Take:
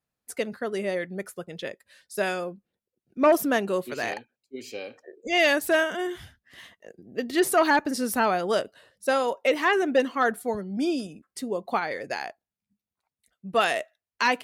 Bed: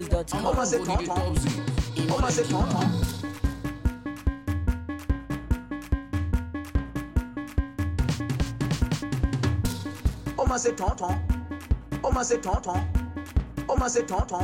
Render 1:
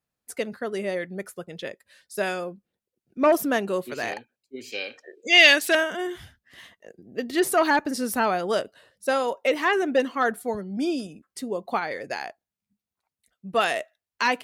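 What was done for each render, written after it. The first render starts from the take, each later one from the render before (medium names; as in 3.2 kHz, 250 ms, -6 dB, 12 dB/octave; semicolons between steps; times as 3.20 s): 4.72–5.75 s: frequency weighting D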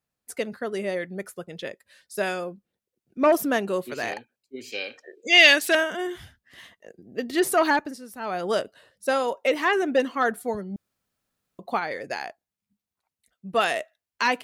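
7.71–8.47 s: dip -14.5 dB, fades 0.28 s; 10.76–11.59 s: room tone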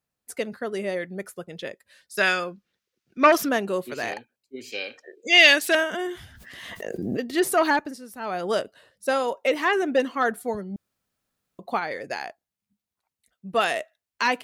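2.17–3.49 s: high-order bell 2.7 kHz +10 dB 2.8 oct; 5.93–7.22 s: swell ahead of each attack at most 28 dB/s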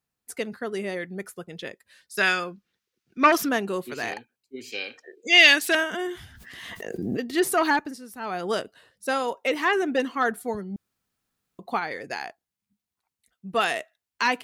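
peaking EQ 580 Hz -7 dB 0.32 oct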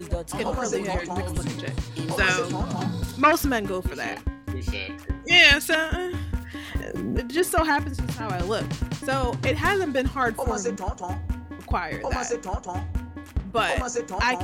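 add bed -3.5 dB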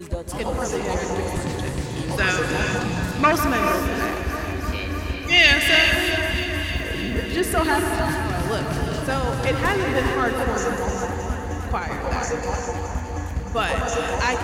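on a send: echo whose repeats swap between lows and highs 155 ms, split 2.1 kHz, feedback 86%, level -9 dB; on the sum: gated-style reverb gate 450 ms rising, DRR 3.5 dB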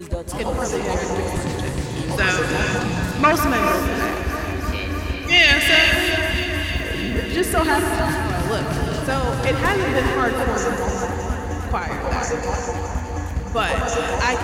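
trim +2 dB; peak limiter -3 dBFS, peak gain reduction 3 dB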